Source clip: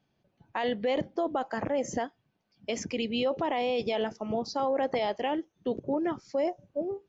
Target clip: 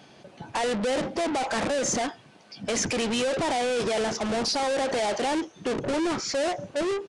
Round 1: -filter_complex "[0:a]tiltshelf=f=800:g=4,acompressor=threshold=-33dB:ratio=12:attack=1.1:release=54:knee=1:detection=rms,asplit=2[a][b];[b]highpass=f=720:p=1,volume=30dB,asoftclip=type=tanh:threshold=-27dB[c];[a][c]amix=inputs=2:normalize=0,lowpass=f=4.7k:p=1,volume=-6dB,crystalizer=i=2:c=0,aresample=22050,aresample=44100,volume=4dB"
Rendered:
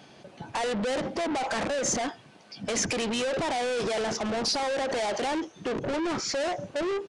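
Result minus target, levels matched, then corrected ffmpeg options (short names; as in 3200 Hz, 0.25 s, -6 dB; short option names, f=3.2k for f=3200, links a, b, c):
compressor: peak gain reduction +8.5 dB
-filter_complex "[0:a]tiltshelf=f=800:g=4,acompressor=threshold=-24dB:ratio=12:attack=1.1:release=54:knee=1:detection=rms,asplit=2[a][b];[b]highpass=f=720:p=1,volume=30dB,asoftclip=type=tanh:threshold=-27dB[c];[a][c]amix=inputs=2:normalize=0,lowpass=f=4.7k:p=1,volume=-6dB,crystalizer=i=2:c=0,aresample=22050,aresample=44100,volume=4dB"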